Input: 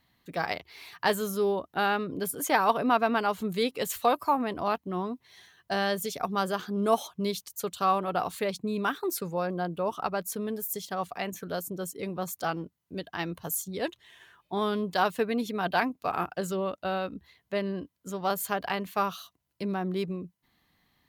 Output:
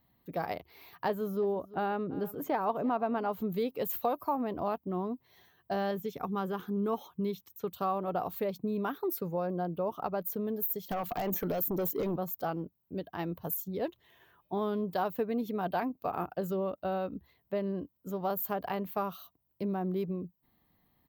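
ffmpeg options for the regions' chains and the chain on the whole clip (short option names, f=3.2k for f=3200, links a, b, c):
-filter_complex "[0:a]asettb=1/sr,asplit=3[a][b][c];[a]atrim=end=1.084[d];[b]atrim=start=1.08:end=3.32,asetpts=PTS-STARTPTS,afade=t=in:d=0.004:c=qsin,afade=t=out:st=2.236:d=0.004:c=qsin,highshelf=f=5.1k:g=-11,aecho=1:1:340:0.1,atrim=end_sample=98784[e];[c]atrim=start=3.316[f];[d][e]acrossfade=d=0.004:c1=hsin:c2=qsin[g];[g][f]acrossfade=d=0.004:c1=qsin:c2=hsin,asettb=1/sr,asplit=3[h][i][j];[h]atrim=end=5.914[k];[i]atrim=start=5.91:end=7.73,asetpts=PTS-STARTPTS,afade=t=in:d=0.004:c=qsin,afade=t=out:st=1.816:d=0.004:c=qsin,bandreject=f=4.6k:w=5.4,acrossover=split=5800[l][m];[m]acompressor=threshold=-51dB:ratio=4:attack=1:release=60[n];[l][n]amix=inputs=2:normalize=0,equalizer=f=640:w=4.9:g=-13.5[o];[j]atrim=start=7.726[p];[k][o]acrossfade=d=0.004:c1=hsin:c2=qsin[q];[q][p]acrossfade=d=0.004:c1=qsin:c2=hsin,asettb=1/sr,asplit=3[r][s][t];[r]atrim=end=10.894[u];[s]atrim=start=10.89:end=12.16,asetpts=PTS-STARTPTS,afade=t=in:d=0.004:c=qsin,afade=t=out:st=1.266:d=0.004:c=qsin,highpass=f=300:p=1,acompressor=threshold=-36dB:ratio=10:attack=3.2:release=140:knee=1:detection=peak,aeval=exprs='0.0531*sin(PI/2*3.55*val(0)/0.0531)':c=same[v];[t]atrim=start=12.156[w];[u][v]acrossfade=d=0.004:c1=hsin:c2=qsin[x];[x][w]acrossfade=d=0.004:c1=qsin:c2=hsin,firequalizer=gain_entry='entry(630,0);entry(1600,-9);entry(10000,-17);entry(15000,10)':delay=0.05:min_phase=1,acompressor=threshold=-30dB:ratio=2"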